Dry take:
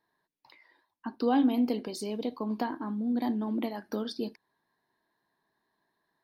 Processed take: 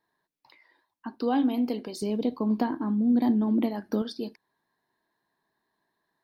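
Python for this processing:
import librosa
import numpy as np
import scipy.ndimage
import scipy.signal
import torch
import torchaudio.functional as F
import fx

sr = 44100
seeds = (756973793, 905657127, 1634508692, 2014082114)

y = fx.low_shelf(x, sr, hz=410.0, db=9.5, at=(2.02, 4.02))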